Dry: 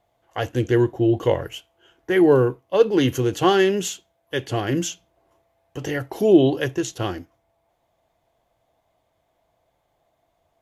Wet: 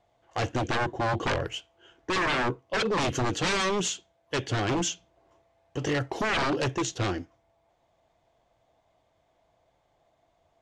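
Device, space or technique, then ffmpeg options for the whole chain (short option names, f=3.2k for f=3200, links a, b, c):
synthesiser wavefolder: -af "aeval=exprs='0.0891*(abs(mod(val(0)/0.0891+3,4)-2)-1)':c=same,lowpass=f=7.8k:w=0.5412,lowpass=f=7.8k:w=1.3066"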